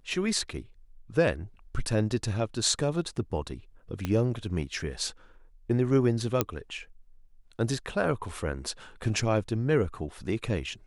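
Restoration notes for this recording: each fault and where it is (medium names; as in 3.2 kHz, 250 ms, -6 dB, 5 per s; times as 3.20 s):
4.05 s: pop -16 dBFS
6.41 s: pop -8 dBFS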